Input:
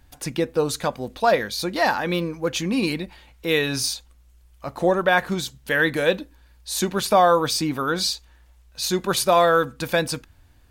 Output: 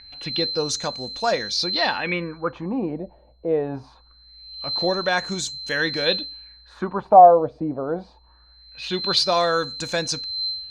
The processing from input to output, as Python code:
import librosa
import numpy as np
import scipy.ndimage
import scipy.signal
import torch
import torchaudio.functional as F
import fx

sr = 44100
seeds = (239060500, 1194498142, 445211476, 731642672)

y = x + 10.0 ** (-31.0 / 20.0) * np.sin(2.0 * np.pi * 4100.0 * np.arange(len(x)) / sr)
y = fx.filter_lfo_lowpass(y, sr, shape='sine', hz=0.23, low_hz=600.0, high_hz=7100.0, q=4.5)
y = y * librosa.db_to_amplitude(-4.0)